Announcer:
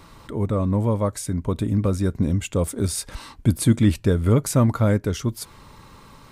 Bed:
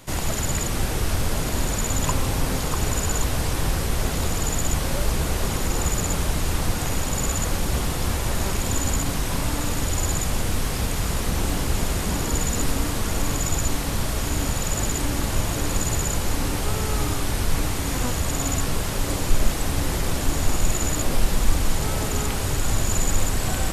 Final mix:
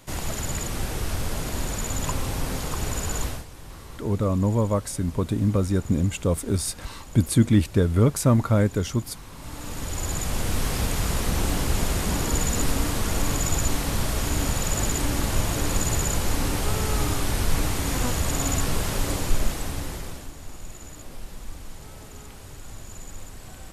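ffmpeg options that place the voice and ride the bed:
-filter_complex "[0:a]adelay=3700,volume=-1dB[a];[1:a]volume=14dB,afade=t=out:st=3.25:d=0.2:silence=0.188365,afade=t=in:st=9.34:d=1.33:silence=0.11885,afade=t=out:st=18.95:d=1.37:silence=0.133352[b];[a][b]amix=inputs=2:normalize=0"

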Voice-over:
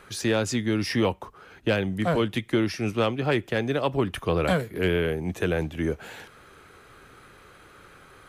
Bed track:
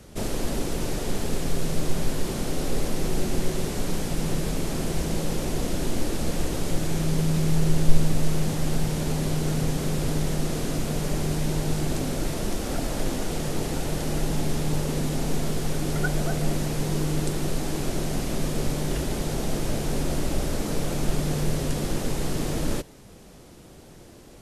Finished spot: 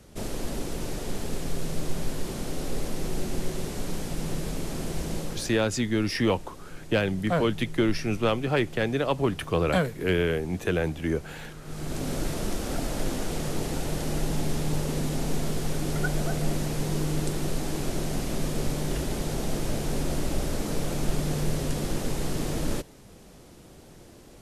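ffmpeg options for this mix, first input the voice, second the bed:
-filter_complex "[0:a]adelay=5250,volume=-0.5dB[a];[1:a]volume=11.5dB,afade=t=out:st=5.16:d=0.45:silence=0.211349,afade=t=in:st=11.63:d=0.5:silence=0.158489[b];[a][b]amix=inputs=2:normalize=0"

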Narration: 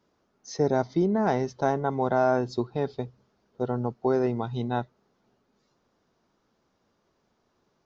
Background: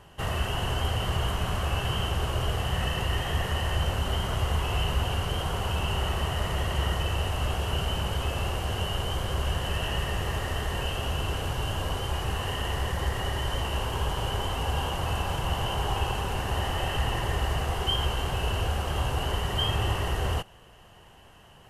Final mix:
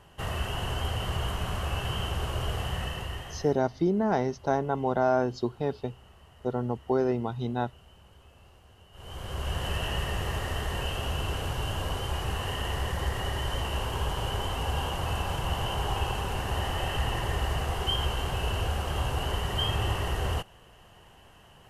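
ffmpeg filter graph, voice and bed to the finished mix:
-filter_complex "[0:a]adelay=2850,volume=-1.5dB[a];[1:a]volume=22dB,afade=t=out:st=2.63:d=0.98:silence=0.0668344,afade=t=in:st=8.92:d=0.73:silence=0.0562341[b];[a][b]amix=inputs=2:normalize=0"

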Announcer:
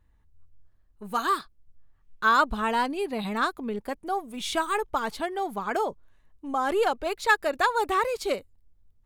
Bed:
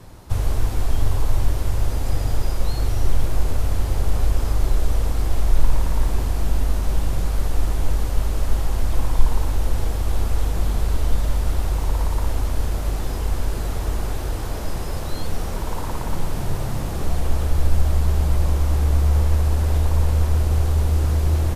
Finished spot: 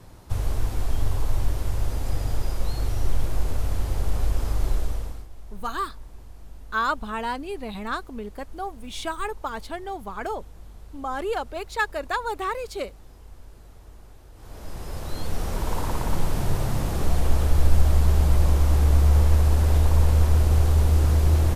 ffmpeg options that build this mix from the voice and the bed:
-filter_complex "[0:a]adelay=4500,volume=-3.5dB[a];[1:a]volume=18.5dB,afade=t=out:st=4.72:d=0.55:silence=0.11885,afade=t=in:st=14.34:d=1.41:silence=0.0707946[b];[a][b]amix=inputs=2:normalize=0"

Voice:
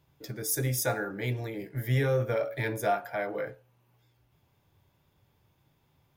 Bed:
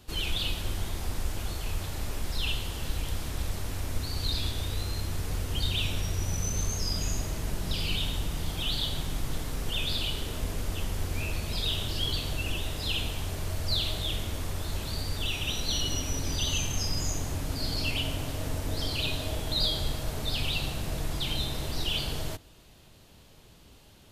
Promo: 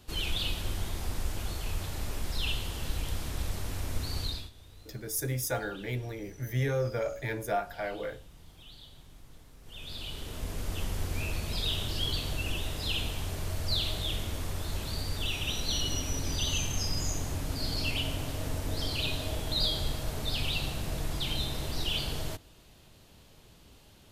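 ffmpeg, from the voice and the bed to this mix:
-filter_complex "[0:a]adelay=4650,volume=-3dB[a];[1:a]volume=18dB,afade=t=out:st=4.18:d=0.32:silence=0.105925,afade=t=in:st=9.62:d=1.2:silence=0.105925[b];[a][b]amix=inputs=2:normalize=0"

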